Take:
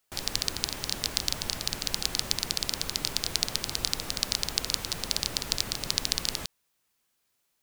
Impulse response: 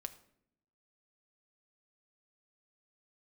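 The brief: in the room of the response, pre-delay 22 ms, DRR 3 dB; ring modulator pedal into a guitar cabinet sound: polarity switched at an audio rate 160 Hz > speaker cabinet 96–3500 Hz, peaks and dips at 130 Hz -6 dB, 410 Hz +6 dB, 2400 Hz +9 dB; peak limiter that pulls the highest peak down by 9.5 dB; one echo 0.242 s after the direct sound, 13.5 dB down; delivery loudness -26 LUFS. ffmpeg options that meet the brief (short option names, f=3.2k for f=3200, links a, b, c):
-filter_complex "[0:a]alimiter=limit=-11dB:level=0:latency=1,aecho=1:1:242:0.211,asplit=2[a][b];[1:a]atrim=start_sample=2205,adelay=22[c];[b][c]afir=irnorm=-1:irlink=0,volume=0dB[d];[a][d]amix=inputs=2:normalize=0,aeval=exprs='val(0)*sgn(sin(2*PI*160*n/s))':c=same,highpass=96,equalizer=f=130:t=q:w=4:g=-6,equalizer=f=410:t=q:w=4:g=6,equalizer=f=2.4k:t=q:w=4:g=9,lowpass=f=3.5k:w=0.5412,lowpass=f=3.5k:w=1.3066,volume=9dB"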